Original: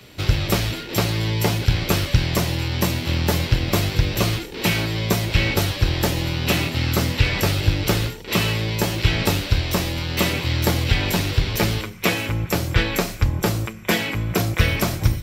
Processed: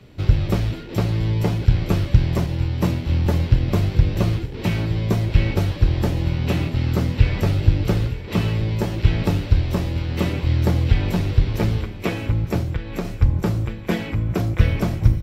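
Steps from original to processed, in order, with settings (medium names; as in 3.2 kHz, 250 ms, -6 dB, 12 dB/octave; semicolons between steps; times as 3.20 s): tilt EQ -3 dB/octave; on a send: feedback delay 915 ms, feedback 41%, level -13.5 dB; 12.61–13.05 s: on the sum: compression 16:1, threshold -13 dBFS, peak gain reduction 13.5 dB; bass shelf 73 Hz -5 dB; 2.46–3.26 s: three bands expanded up and down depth 70%; trim -5.5 dB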